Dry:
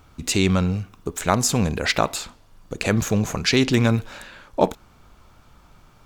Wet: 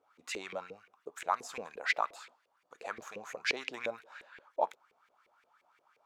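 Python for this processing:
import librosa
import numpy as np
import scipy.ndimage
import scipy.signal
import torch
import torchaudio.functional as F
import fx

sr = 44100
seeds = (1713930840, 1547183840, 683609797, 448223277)

y = fx.riaa(x, sr, side='recording')
y = fx.filter_lfo_bandpass(y, sr, shape='saw_up', hz=5.7, low_hz=420.0, high_hz=2400.0, q=4.3)
y = y * 10.0 ** (-4.5 / 20.0)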